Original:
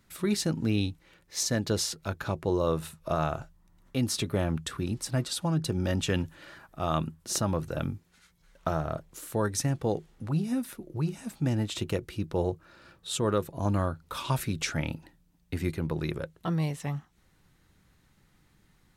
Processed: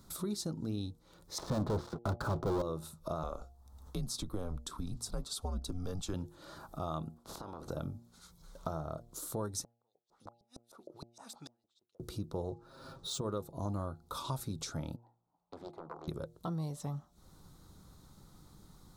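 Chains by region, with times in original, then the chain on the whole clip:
0:01.38–0:02.62: low-pass filter 1,900 Hz 24 dB per octave + leveller curve on the samples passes 5
0:03.23–0:06.14: frequency shifter −96 Hz + de-essing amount 25%
0:07.16–0:07.68: ceiling on every frequency bin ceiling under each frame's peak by 26 dB + low-pass filter 1,300 Hz 6 dB per octave + downward compressor, threshold −43 dBFS
0:09.64–0:12.00: auto-filter band-pass saw up 6.5 Hz 530–5,400 Hz + gate with flip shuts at −39 dBFS, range −40 dB + high-shelf EQ 3,800 Hz +7 dB
0:12.51–0:13.21: comb filter 7.5 ms, depth 91% + linearly interpolated sample-rate reduction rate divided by 3×
0:14.96–0:16.08: resonant band-pass 820 Hz, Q 3.7 + highs frequency-modulated by the lows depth 0.76 ms
whole clip: downward compressor 2.5 to 1, threshold −50 dBFS; flat-topped bell 2,200 Hz −15 dB 1.1 octaves; hum removal 117.4 Hz, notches 7; level +7 dB

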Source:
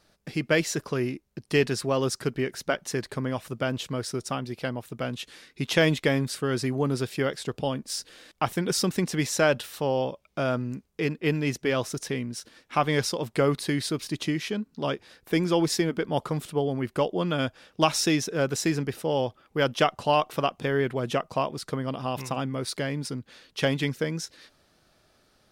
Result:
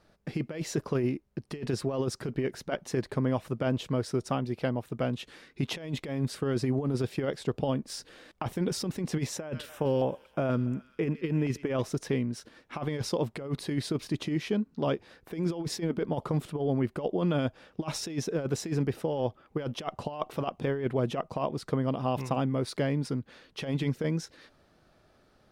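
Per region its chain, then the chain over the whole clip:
0:09.37–0:11.82: feedback echo with a high-pass in the loop 130 ms, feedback 73%, high-pass 1,000 Hz, level −19 dB + auto-filter notch square 3.1 Hz 720–4,300 Hz
whole clip: dynamic equaliser 1,500 Hz, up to −4 dB, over −43 dBFS, Q 1.5; compressor whose output falls as the input rises −27 dBFS, ratio −0.5; high-shelf EQ 2,700 Hz −12 dB

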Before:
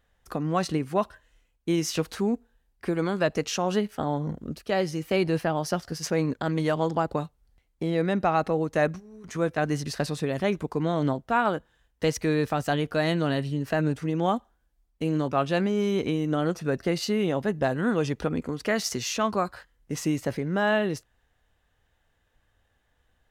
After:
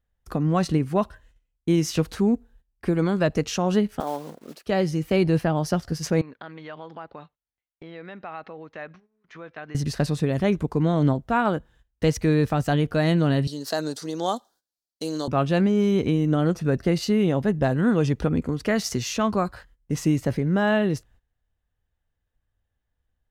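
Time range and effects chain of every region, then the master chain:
0:04.00–0:04.67: one scale factor per block 5 bits + Chebyshev high-pass filter 530 Hz
0:06.21–0:09.75: downward compressor 3 to 1, threshold −26 dBFS + resonant band-pass 2,800 Hz, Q 0.61 + high-frequency loss of the air 240 metres
0:13.47–0:15.28: high-pass filter 420 Hz + high shelf with overshoot 3,300 Hz +10 dB, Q 3
whole clip: noise gate −57 dBFS, range −16 dB; low-shelf EQ 230 Hz +11 dB

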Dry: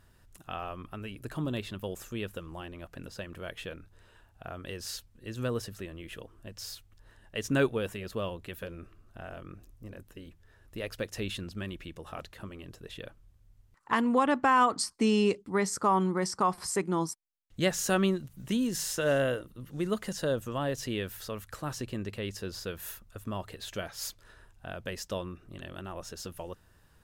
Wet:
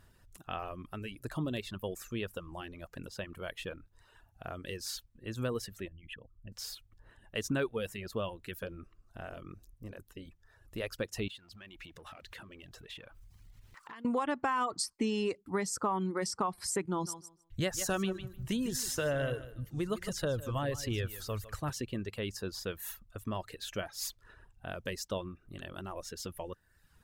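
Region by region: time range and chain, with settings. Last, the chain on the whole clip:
0:05.88–0:06.52: spectral envelope exaggerated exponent 2 + parametric band 390 Hz −13 dB 1.4 octaves
0:11.28–0:14.05: mu-law and A-law mismatch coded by mu + downward compressor 10 to 1, threshold −49 dBFS + parametric band 2,600 Hz +8 dB 2.5 octaves
0:16.85–0:21.70: low shelf with overshoot 140 Hz +7.5 dB, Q 1.5 + repeating echo 152 ms, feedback 22%, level −9 dB
whole clip: reverb reduction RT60 0.82 s; downward compressor 4 to 1, threshold −29 dBFS

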